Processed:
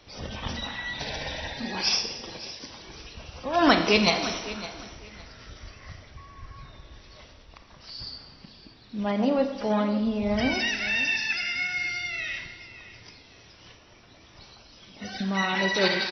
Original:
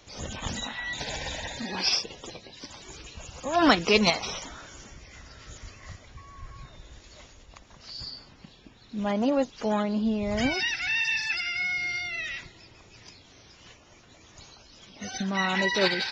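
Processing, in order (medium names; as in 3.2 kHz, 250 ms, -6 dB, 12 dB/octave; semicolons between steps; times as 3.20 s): brick-wall FIR low-pass 6 kHz; feedback delay 560 ms, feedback 22%, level -15.5 dB; Schroeder reverb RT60 1 s, combs from 27 ms, DRR 6.5 dB; endings held to a fixed fall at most 460 dB/s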